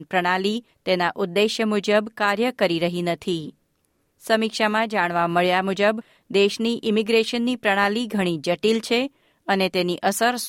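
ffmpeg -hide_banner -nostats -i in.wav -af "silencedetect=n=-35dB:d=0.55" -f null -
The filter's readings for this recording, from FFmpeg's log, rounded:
silence_start: 3.50
silence_end: 4.25 | silence_duration: 0.75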